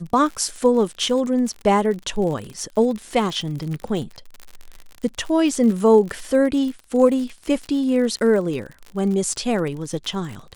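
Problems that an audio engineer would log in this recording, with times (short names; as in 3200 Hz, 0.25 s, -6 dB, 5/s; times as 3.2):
crackle 60/s -28 dBFS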